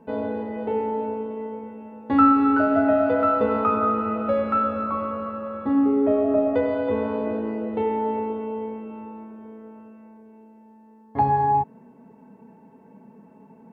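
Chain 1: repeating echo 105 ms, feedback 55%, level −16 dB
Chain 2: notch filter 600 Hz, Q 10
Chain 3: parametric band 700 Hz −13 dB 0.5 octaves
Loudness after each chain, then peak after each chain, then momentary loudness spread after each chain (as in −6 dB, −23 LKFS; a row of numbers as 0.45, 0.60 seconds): −22.5, −23.5, −24.5 LKFS; −6.0, −6.0, −7.0 dBFS; 16, 16, 18 LU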